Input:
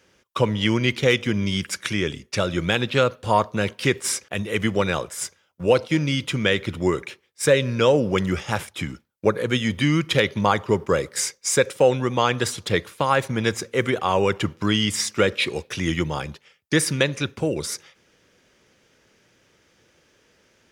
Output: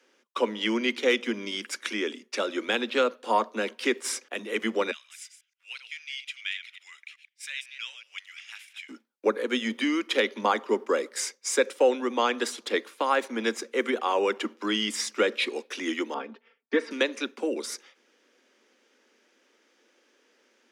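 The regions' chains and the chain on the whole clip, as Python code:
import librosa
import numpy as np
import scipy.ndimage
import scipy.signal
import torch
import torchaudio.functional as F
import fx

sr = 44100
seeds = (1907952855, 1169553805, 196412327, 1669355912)

y = fx.chain(x, sr, fx.reverse_delay(ms=125, wet_db=-10.0),
    fx.ladder_highpass(hz=2000.0, resonance_pct=45), at=(4.91, 8.89))
y = fx.chain(y, sr, fx.lowpass(hz=3300.0, slope=12),
    fx.high_shelf(hz=2400.0, db=-11.5),
    fx.comb(ms=4.4, depth=0.83), at=(16.14, 16.91))
y = scipy.signal.sosfilt(scipy.signal.butter(16, 220.0, 'highpass', fs=sr, output='sos'), y)
y = fx.high_shelf(y, sr, hz=9000.0, db=-7.0)
y = fx.notch(y, sr, hz=640.0, q=21.0)
y = F.gain(torch.from_numpy(y), -4.0).numpy()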